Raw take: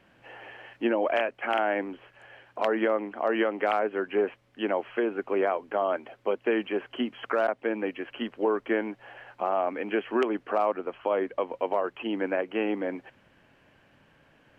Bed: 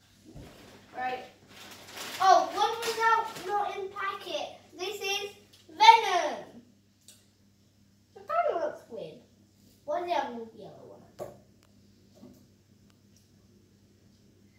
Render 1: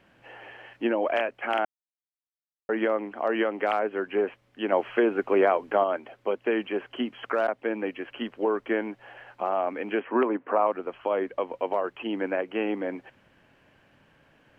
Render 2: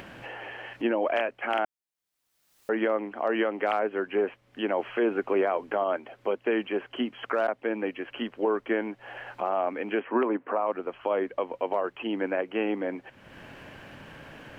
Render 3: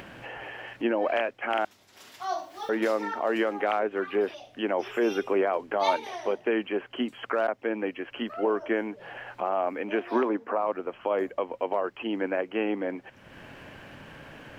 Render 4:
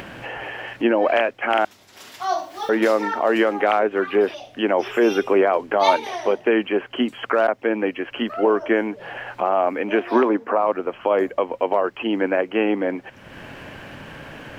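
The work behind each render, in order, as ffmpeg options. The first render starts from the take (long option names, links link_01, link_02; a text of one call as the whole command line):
ffmpeg -i in.wav -filter_complex "[0:a]asettb=1/sr,asplit=3[link_01][link_02][link_03];[link_01]atrim=end=4.724[link_04];[link_02]atrim=start=4.72:end=5.84,asetpts=PTS-STARTPTS,afade=type=in:duration=0.004:curve=qsin,afade=type=out:start_time=1.116:duration=0.004:curve=qsin,acontrast=22[link_05];[link_03]atrim=start=5.836[link_06];[link_04][link_05]acrossfade=duration=0.004:curve1=hsin:curve2=qsin[link_07];[link_07][link_06]acrossfade=duration=0.004:curve1=qsin:curve2=hsin,asettb=1/sr,asplit=3[link_08][link_09][link_10];[link_08]atrim=end=10.004[link_11];[link_09]atrim=start=10:end=10.67,asetpts=PTS-STARTPTS,afade=type=in:duration=0.004:curve=qsin,afade=type=out:start_time=0.666:duration=0.004:curve=qsin,highpass=170,equalizer=frequency=260:width_type=q:width=4:gain=6,equalizer=frequency=520:width_type=q:width=4:gain=4,equalizer=frequency=990:width_type=q:width=4:gain=7,lowpass=frequency=2400:width=0.5412,lowpass=frequency=2400:width=1.3066[link_12];[link_10]atrim=start=10.666[link_13];[link_11][link_12]acrossfade=duration=0.004:curve1=hsin:curve2=qsin[link_14];[link_14][link_13]acrossfade=duration=0.004:curve1=qsin:curve2=hsin,asplit=3[link_15][link_16][link_17];[link_15]atrim=end=1.65,asetpts=PTS-STARTPTS,afade=type=out:start_time=1.646:duration=0.004:curve=hsin[link_18];[link_16]atrim=start=1.65:end=2.69,asetpts=PTS-STARTPTS,volume=0[link_19];[link_17]atrim=start=2.69,asetpts=PTS-STARTPTS,afade=type=in:duration=0.004:curve=hsin[link_20];[link_18][link_19][link_20]concat=n=3:v=0:a=1" out.wav
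ffmpeg -i in.wav -af "alimiter=limit=-16.5dB:level=0:latency=1:release=50,acompressor=mode=upward:threshold=-32dB:ratio=2.5" out.wav
ffmpeg -i in.wav -i bed.wav -filter_complex "[1:a]volume=-11dB[link_01];[0:a][link_01]amix=inputs=2:normalize=0" out.wav
ffmpeg -i in.wav -af "volume=8dB" out.wav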